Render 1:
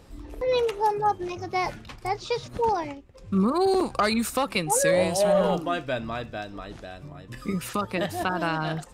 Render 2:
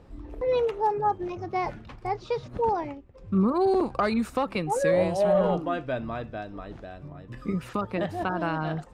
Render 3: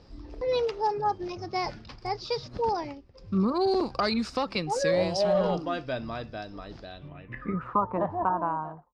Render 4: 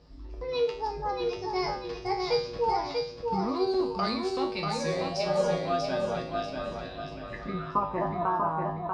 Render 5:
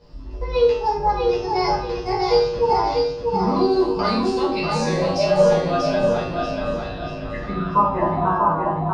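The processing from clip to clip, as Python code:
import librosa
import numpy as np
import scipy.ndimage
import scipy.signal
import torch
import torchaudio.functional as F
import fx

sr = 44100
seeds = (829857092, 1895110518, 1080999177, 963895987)

y1 = fx.lowpass(x, sr, hz=1300.0, slope=6)
y2 = fx.fade_out_tail(y1, sr, length_s=0.85)
y2 = fx.filter_sweep_lowpass(y2, sr, from_hz=5000.0, to_hz=1000.0, start_s=6.79, end_s=7.79, q=6.3)
y2 = fx.high_shelf(y2, sr, hz=7000.0, db=8.5)
y2 = y2 * librosa.db_to_amplitude(-2.5)
y3 = fx.rider(y2, sr, range_db=4, speed_s=2.0)
y3 = fx.comb_fb(y3, sr, f0_hz=53.0, decay_s=0.5, harmonics='odd', damping=0.0, mix_pct=90)
y3 = fx.echo_feedback(y3, sr, ms=640, feedback_pct=38, wet_db=-4.0)
y3 = y3 * librosa.db_to_amplitude(8.5)
y4 = fx.room_shoebox(y3, sr, seeds[0], volume_m3=380.0, walls='furnished', distance_m=5.0)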